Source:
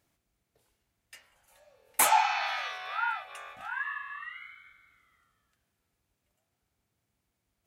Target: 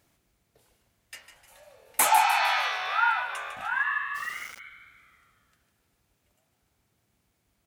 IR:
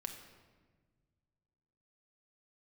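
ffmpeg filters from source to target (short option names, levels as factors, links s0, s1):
-filter_complex "[0:a]alimiter=limit=0.158:level=0:latency=1:release=474,asplit=5[s0][s1][s2][s3][s4];[s1]adelay=152,afreqshift=51,volume=0.316[s5];[s2]adelay=304,afreqshift=102,volume=0.133[s6];[s3]adelay=456,afreqshift=153,volume=0.0556[s7];[s4]adelay=608,afreqshift=204,volume=0.0234[s8];[s0][s5][s6][s7][s8]amix=inputs=5:normalize=0,asplit=3[s9][s10][s11];[s9]afade=t=out:st=4.14:d=0.02[s12];[s10]aeval=exprs='val(0)*gte(abs(val(0)),0.00501)':c=same,afade=t=in:st=4.14:d=0.02,afade=t=out:st=4.58:d=0.02[s13];[s11]afade=t=in:st=4.58:d=0.02[s14];[s12][s13][s14]amix=inputs=3:normalize=0,volume=2.24"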